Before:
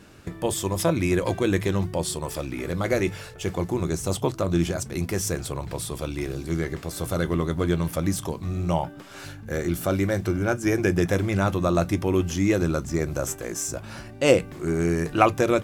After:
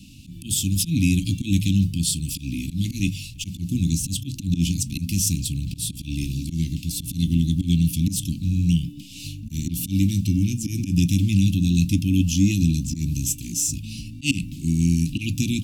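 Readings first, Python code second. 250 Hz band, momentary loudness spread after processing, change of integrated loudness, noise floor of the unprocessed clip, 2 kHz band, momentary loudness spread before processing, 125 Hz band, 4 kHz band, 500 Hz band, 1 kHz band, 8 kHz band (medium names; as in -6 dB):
+3.5 dB, 9 LU, +2.5 dB, -42 dBFS, -5.0 dB, 9 LU, +6.0 dB, +6.0 dB, under -20 dB, under -40 dB, +6.0 dB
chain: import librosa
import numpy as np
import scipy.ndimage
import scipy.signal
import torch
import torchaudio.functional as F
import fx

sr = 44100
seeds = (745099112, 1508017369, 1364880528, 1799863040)

y = fx.auto_swell(x, sr, attack_ms=106.0)
y = scipy.signal.sosfilt(scipy.signal.cheby1(5, 1.0, [280.0, 2600.0], 'bandstop', fs=sr, output='sos'), y)
y = y * librosa.db_to_amplitude(7.5)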